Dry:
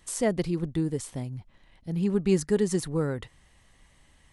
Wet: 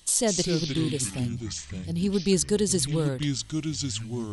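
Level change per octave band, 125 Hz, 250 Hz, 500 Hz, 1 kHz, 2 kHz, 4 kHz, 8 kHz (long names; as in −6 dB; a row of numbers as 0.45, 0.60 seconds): +3.0, +1.5, 0.0, 0.0, +2.5, +14.0, +11.5 decibels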